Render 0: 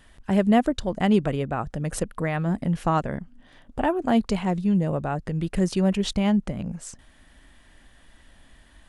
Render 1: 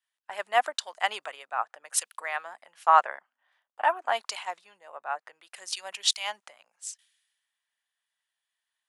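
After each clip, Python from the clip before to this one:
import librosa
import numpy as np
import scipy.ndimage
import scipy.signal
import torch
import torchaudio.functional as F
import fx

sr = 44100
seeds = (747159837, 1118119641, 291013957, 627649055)

y = scipy.signal.sosfilt(scipy.signal.butter(4, 820.0, 'highpass', fs=sr, output='sos'), x)
y = fx.band_widen(y, sr, depth_pct=100)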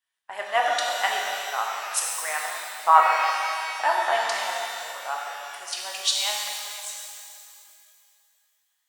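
y = fx.rev_shimmer(x, sr, seeds[0], rt60_s=2.5, semitones=12, shimmer_db=-8, drr_db=-2.0)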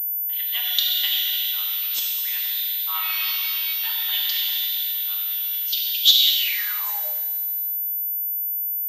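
y = fx.room_shoebox(x, sr, seeds[1], volume_m3=1900.0, walls='mixed', distance_m=1.0)
y = fx.filter_sweep_highpass(y, sr, from_hz=3400.0, to_hz=220.0, start_s=6.35, end_s=7.54, q=7.7)
y = fx.pwm(y, sr, carrier_hz=14000.0)
y = F.gain(torch.from_numpy(y), -2.5).numpy()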